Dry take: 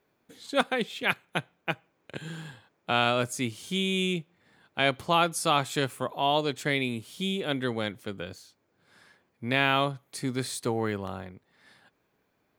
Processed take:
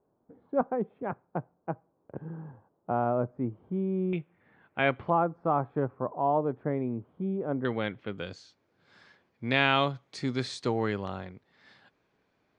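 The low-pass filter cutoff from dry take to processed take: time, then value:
low-pass filter 24 dB per octave
1,000 Hz
from 0:04.13 2,400 Hz
from 0:05.10 1,100 Hz
from 0:07.65 3,000 Hz
from 0:08.18 6,000 Hz

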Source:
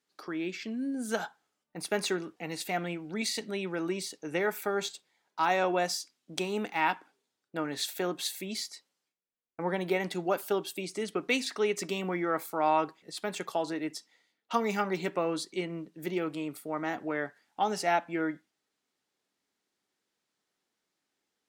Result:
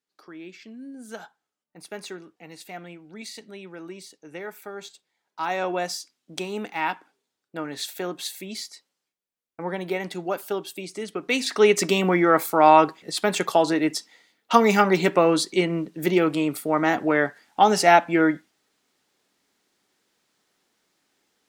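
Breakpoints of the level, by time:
0:04.82 −6.5 dB
0:05.69 +1.5 dB
0:11.21 +1.5 dB
0:11.64 +12 dB

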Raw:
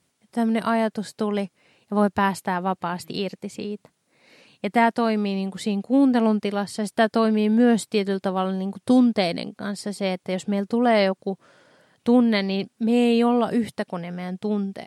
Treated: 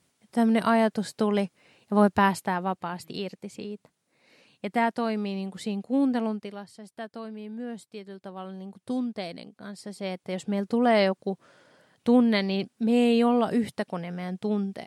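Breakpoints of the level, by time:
0:02.22 0 dB
0:02.89 −6 dB
0:06.11 −6 dB
0:06.81 −18.5 dB
0:08.04 −18.5 dB
0:08.61 −12.5 dB
0:09.50 −12.5 dB
0:10.71 −2.5 dB

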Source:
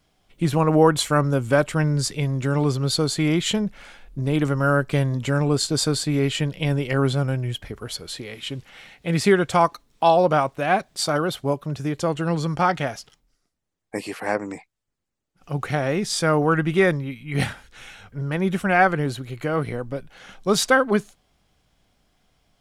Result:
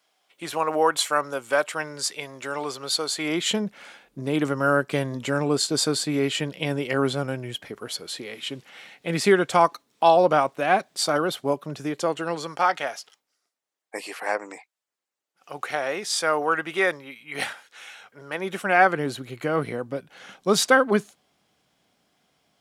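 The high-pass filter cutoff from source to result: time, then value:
0:03.12 610 Hz
0:03.54 230 Hz
0:11.77 230 Hz
0:12.65 550 Hz
0:18.25 550 Hz
0:19.25 180 Hz

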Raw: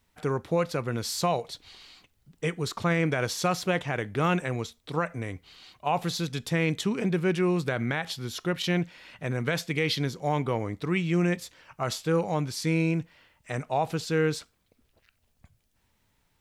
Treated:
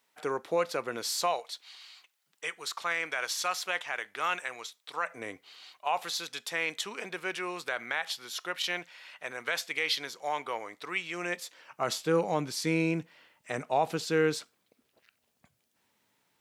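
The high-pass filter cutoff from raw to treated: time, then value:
0:01.10 420 Hz
0:01.50 1,000 Hz
0:04.98 1,000 Hz
0:05.27 340 Hz
0:05.87 770 Hz
0:11.13 770 Hz
0:11.92 230 Hz

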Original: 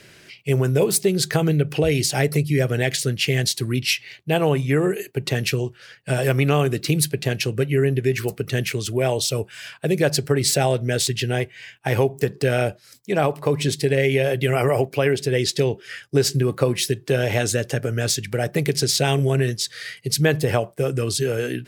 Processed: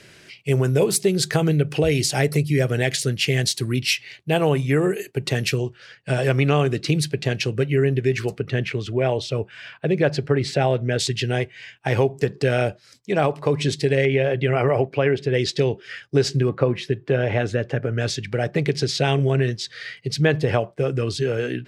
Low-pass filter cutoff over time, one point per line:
11,000 Hz
from 0:05.58 6,200 Hz
from 0:08.39 3,000 Hz
from 0:10.99 6,400 Hz
from 0:14.05 2,900 Hz
from 0:15.34 5,000 Hz
from 0:16.49 2,300 Hz
from 0:17.98 4,200 Hz

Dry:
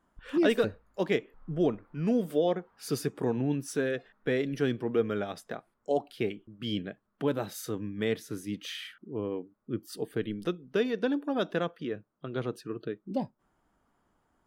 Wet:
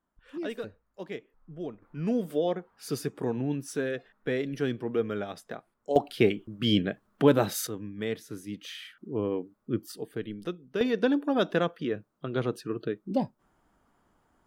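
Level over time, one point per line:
−10.5 dB
from 0:01.82 −1 dB
from 0:05.96 +8.5 dB
from 0:07.67 −2.5 dB
from 0:08.98 +4 dB
from 0:09.92 −3 dB
from 0:10.81 +4 dB

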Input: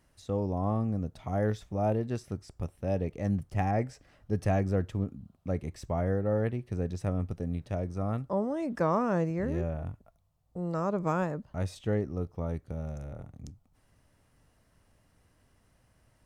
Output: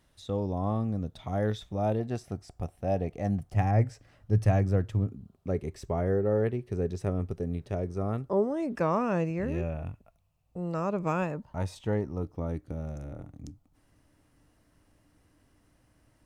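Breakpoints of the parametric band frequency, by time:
parametric band +11.5 dB 0.26 octaves
3,600 Hz
from 0:02.00 720 Hz
from 0:03.56 110 Hz
from 0:05.12 400 Hz
from 0:08.76 2,600 Hz
from 0:11.36 920 Hz
from 0:12.23 300 Hz

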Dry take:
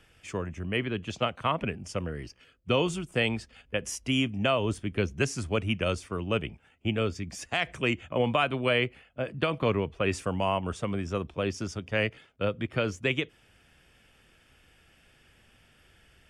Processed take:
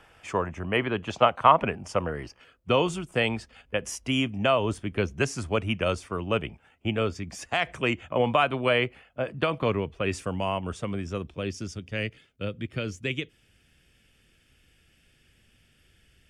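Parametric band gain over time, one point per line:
parametric band 900 Hz 1.7 octaves
0:02.13 +13 dB
0:02.86 +5 dB
0:09.36 +5 dB
0:09.93 −1.5 dB
0:10.93 −1.5 dB
0:11.79 −10.5 dB

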